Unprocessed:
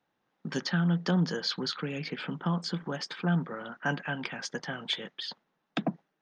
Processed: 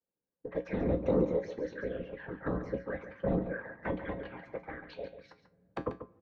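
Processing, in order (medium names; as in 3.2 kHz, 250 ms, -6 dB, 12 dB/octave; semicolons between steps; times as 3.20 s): formant shift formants +4 st; level-controlled noise filter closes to 420 Hz, open at -26.5 dBFS; peaking EQ 2.9 kHz +7.5 dB 2.5 oct; waveshaping leveller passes 1; touch-sensitive flanger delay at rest 4.7 ms, full sweep at -22.5 dBFS; whisper effect; small resonant body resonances 510/1600 Hz, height 13 dB, ringing for 35 ms; low-pass that closes with the level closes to 1.2 kHz, closed at -30.5 dBFS; feedback comb 61 Hz, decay 0.24 s, harmonics odd, mix 70%; delay 140 ms -10.5 dB; on a send at -24 dB: reverberation RT60 3.5 s, pre-delay 3 ms; on the sum: trim -2 dB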